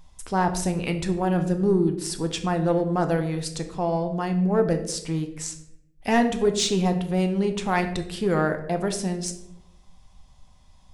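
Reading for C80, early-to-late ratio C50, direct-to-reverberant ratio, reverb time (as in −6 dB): 13.0 dB, 10.5 dB, 6.0 dB, 0.85 s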